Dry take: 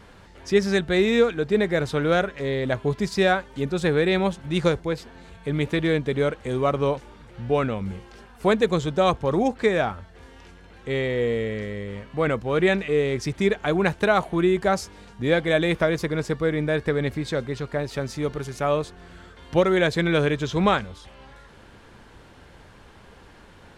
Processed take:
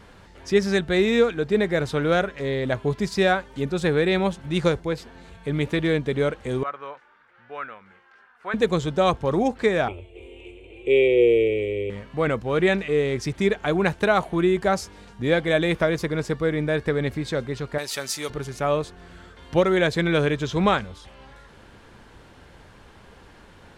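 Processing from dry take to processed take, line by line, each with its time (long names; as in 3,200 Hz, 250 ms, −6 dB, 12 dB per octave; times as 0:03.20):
0:06.63–0:08.54: resonant band-pass 1,500 Hz, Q 2.4
0:09.88–0:11.90: drawn EQ curve 100 Hz 0 dB, 150 Hz −14 dB, 250 Hz −6 dB, 350 Hz +14 dB, 1,700 Hz −24 dB, 2,400 Hz +13 dB, 3,500 Hz 0 dB, 5,100 Hz −28 dB, 8,000 Hz −1 dB, 12,000 Hz −12 dB
0:17.78–0:18.30: spectral tilt +4.5 dB per octave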